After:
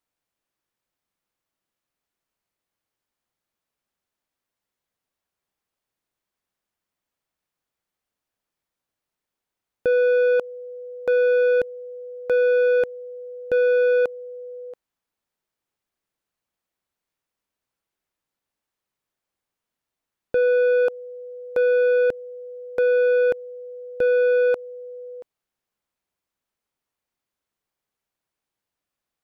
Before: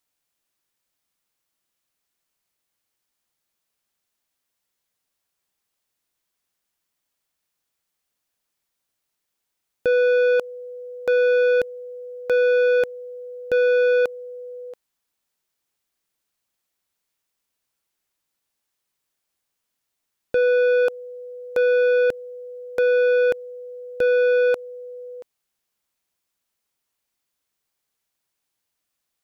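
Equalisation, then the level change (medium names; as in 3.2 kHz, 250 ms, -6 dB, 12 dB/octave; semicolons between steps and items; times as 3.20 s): treble shelf 2.6 kHz -10 dB; 0.0 dB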